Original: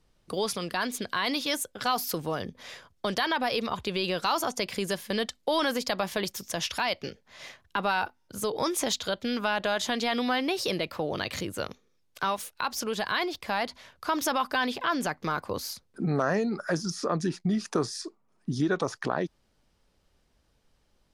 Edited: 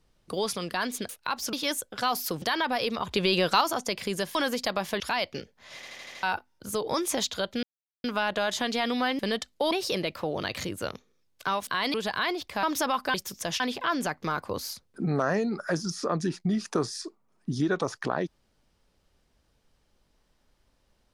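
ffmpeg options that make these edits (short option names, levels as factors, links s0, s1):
-filter_complex "[0:a]asplit=22[s0][s1][s2][s3][s4][s5][s6][s7][s8][s9][s10][s11][s12][s13][s14][s15][s16][s17][s18][s19][s20][s21];[s0]atrim=end=1.092[s22];[s1]atrim=start=12.428:end=12.872[s23];[s2]atrim=start=1.358:end=2.252[s24];[s3]atrim=start=3.128:end=3.822[s25];[s4]atrim=start=3.818:end=4.322,asetpts=PTS-STARTPTS,volume=1.78[s26];[s5]atrim=start=4.318:end=5.062[s27];[s6]atrim=start=5.578:end=6.232[s28];[s7]atrim=start=6.688:end=7.522[s29];[s8]atrim=start=7.438:end=7.522[s30];[s9]atrim=start=7.438:end=7.522[s31];[s10]atrim=start=7.438:end=7.522[s32];[s11]atrim=start=7.438:end=7.522[s33];[s12]atrim=start=7.438:end=7.522[s34];[s13]atrim=start=7.918:end=9.32,asetpts=PTS-STARTPTS,afade=t=out:st=1.398:d=0.004:c=hsin,apad=pad_dur=0.41[s35];[s14]atrim=start=9.32:end=10.472,asetpts=PTS-STARTPTS,afade=t=in:d=0.004:c=hsin[s36];[s15]atrim=start=5.058:end=5.582[s37];[s16]atrim=start=10.468:end=12.432[s38];[s17]atrim=start=1.088:end=1.362[s39];[s18]atrim=start=12.868:end=13.562[s40];[s19]atrim=start=14.088:end=14.602[s41];[s20]atrim=start=6.228:end=6.692[s42];[s21]atrim=start=14.598[s43];[s22][s23]acrossfade=d=0.004:c1=hsin:c2=hsin[s44];[s44][s24]acrossfade=d=0.004:c1=hsin:c2=hsin[s45];[s45][s25]acrossfade=d=0.004:c1=hsin:c2=hsin[s46];[s46][s26]acrossfade=d=0.004:c1=hsin:c2=hsin[s47];[s47][s27]acrossfade=d=0.004:c1=hsin:c2=hsin[s48];[s48][s28]acrossfade=d=0.004:c1=hsin:c2=hsin[s49];[s49][s29]acrossfade=d=0.004:c1=hsin:c2=hsin[s50];[s50][s30]acrossfade=d=0.004:c1=hsin:c2=hsin[s51];[s51][s31]acrossfade=d=0.004:c1=hsin:c2=hsin[s52];[s52][s32]acrossfade=d=0.004:c1=hsin:c2=hsin[s53];[s53][s33]acrossfade=d=0.004:c1=hsin:c2=hsin[s54];[s54][s34]acrossfade=d=0.004:c1=hsin:c2=hsin[s55];[s35][s36]concat=n=2:v=0:a=1[s56];[s55][s56]acrossfade=d=0.004:c1=hsin:c2=hsin[s57];[s57][s37]acrossfade=d=0.004:c1=hsin:c2=hsin[s58];[s58][s38]acrossfade=d=0.004:c1=hsin:c2=hsin[s59];[s59][s39]acrossfade=d=0.004:c1=hsin:c2=hsin[s60];[s60][s40]acrossfade=d=0.004:c1=hsin:c2=hsin[s61];[s61][s41]acrossfade=d=0.004:c1=hsin:c2=hsin[s62];[s62][s42]acrossfade=d=0.004:c1=hsin:c2=hsin[s63];[s63][s43]acrossfade=d=0.004:c1=hsin:c2=hsin"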